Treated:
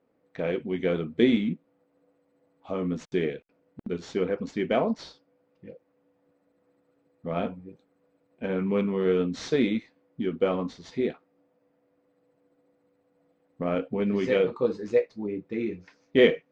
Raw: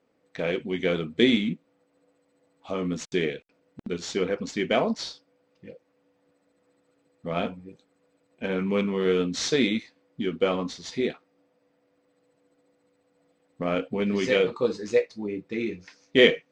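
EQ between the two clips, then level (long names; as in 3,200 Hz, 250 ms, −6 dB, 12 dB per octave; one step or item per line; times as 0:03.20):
high-shelf EQ 2,200 Hz −10 dB
high-shelf EQ 5,100 Hz −5.5 dB
0.0 dB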